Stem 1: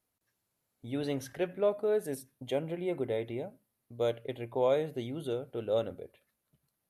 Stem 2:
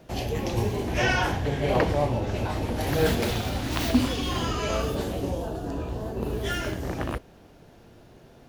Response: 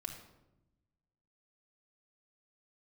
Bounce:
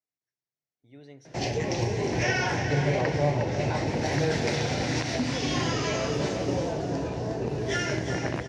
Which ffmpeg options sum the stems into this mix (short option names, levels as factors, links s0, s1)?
-filter_complex "[0:a]volume=0.141,asplit=2[s0][s1];[s1]volume=0.398[s2];[1:a]alimiter=limit=0.119:level=0:latency=1:release=279,adelay=1250,volume=1.33,asplit=2[s3][s4];[s4]volume=0.376[s5];[2:a]atrim=start_sample=2205[s6];[s2][s6]afir=irnorm=-1:irlink=0[s7];[s5]aecho=0:1:359|718|1077|1436|1795|2154:1|0.42|0.176|0.0741|0.0311|0.0131[s8];[s0][s3][s7][s8]amix=inputs=4:normalize=0,highpass=130,equalizer=f=140:t=q:w=4:g=8,equalizer=f=220:t=q:w=4:g=-5,equalizer=f=1200:t=q:w=4:g=-7,equalizer=f=2000:t=q:w=4:g=6,equalizer=f=3200:t=q:w=4:g=-5,equalizer=f=5600:t=q:w=4:g=7,lowpass=f=7000:w=0.5412,lowpass=f=7000:w=1.3066"